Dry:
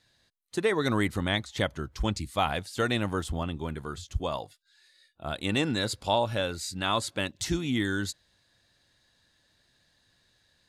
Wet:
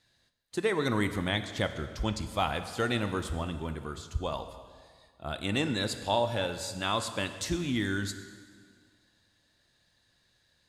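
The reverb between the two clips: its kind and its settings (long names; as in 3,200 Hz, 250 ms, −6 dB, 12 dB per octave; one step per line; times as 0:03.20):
dense smooth reverb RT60 1.9 s, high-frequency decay 0.85×, DRR 8.5 dB
level −2.5 dB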